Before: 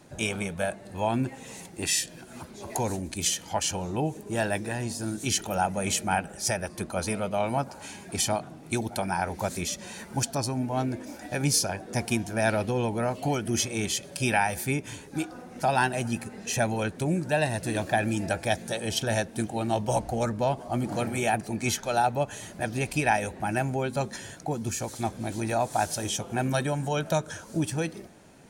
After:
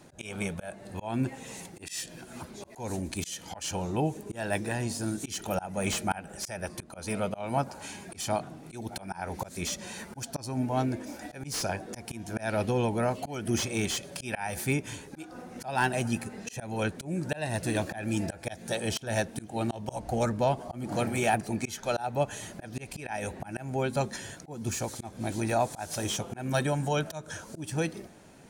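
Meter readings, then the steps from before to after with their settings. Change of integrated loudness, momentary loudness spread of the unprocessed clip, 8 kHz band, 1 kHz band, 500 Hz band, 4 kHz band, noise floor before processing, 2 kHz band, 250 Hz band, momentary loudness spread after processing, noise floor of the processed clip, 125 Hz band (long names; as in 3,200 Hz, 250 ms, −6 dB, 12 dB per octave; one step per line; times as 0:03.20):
−4.0 dB, 7 LU, −6.0 dB, −5.0 dB, −3.0 dB, −5.0 dB, −47 dBFS, −4.5 dB, −2.5 dB, 12 LU, −50 dBFS, −3.0 dB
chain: volume swells 234 ms
slew-rate limiting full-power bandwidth 190 Hz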